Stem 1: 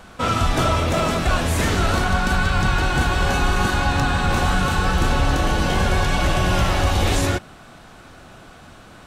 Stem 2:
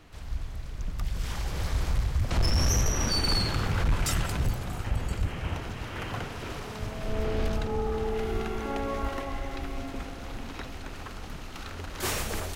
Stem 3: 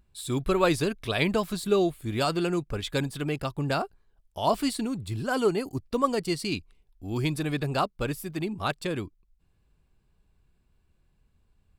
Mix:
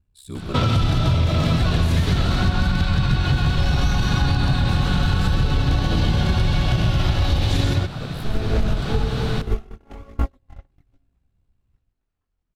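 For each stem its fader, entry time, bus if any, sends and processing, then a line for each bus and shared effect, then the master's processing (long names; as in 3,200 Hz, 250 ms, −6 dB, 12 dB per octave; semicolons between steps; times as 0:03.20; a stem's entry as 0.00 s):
−2.5 dB, 0.35 s, bus A, no send, echo send −3.5 dB, graphic EQ with 10 bands 125 Hz +11 dB, 4,000 Hz +11 dB, 8,000 Hz −6 dB
−0.5 dB, 1.15 s, bus A, no send, no echo send, noise gate −26 dBFS, range −58 dB; multi-voice chorus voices 4, 1.2 Hz, delay 21 ms, depth 3.6 ms
−6.5 dB, 0.00 s, no bus, no send, echo send −7 dB, ring modulation 33 Hz
bus A: 0.0 dB, automatic gain control gain up to 14 dB; brickwall limiter −11.5 dBFS, peak gain reduction 10.5 dB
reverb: not used
echo: single-tap delay 133 ms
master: low-shelf EQ 260 Hz +8.5 dB; downward compressor, threshold −15 dBFS, peak gain reduction 10 dB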